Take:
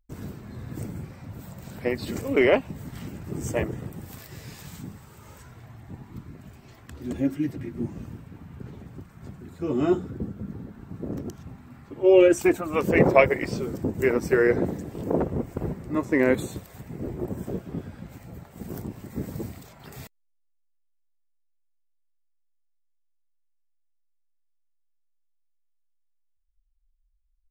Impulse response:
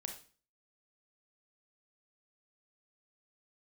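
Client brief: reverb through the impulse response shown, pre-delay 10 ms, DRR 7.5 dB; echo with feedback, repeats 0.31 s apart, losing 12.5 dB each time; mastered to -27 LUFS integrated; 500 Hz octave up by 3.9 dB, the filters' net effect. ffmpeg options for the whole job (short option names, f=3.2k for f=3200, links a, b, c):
-filter_complex "[0:a]equalizer=f=500:t=o:g=5,aecho=1:1:310|620|930:0.237|0.0569|0.0137,asplit=2[a][b];[1:a]atrim=start_sample=2205,adelay=10[c];[b][c]afir=irnorm=-1:irlink=0,volume=-5.5dB[d];[a][d]amix=inputs=2:normalize=0,volume=-5.5dB"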